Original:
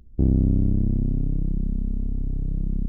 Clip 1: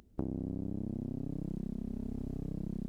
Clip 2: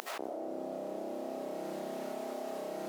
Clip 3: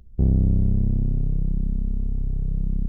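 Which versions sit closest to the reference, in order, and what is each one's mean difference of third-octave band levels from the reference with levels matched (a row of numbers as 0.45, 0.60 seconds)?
3, 1, 2; 1.0, 7.0, 22.5 decibels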